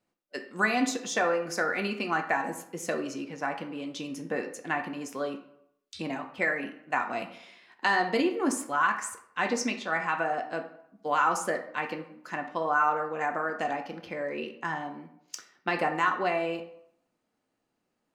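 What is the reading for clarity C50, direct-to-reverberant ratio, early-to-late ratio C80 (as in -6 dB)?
10.5 dB, 5.0 dB, 13.5 dB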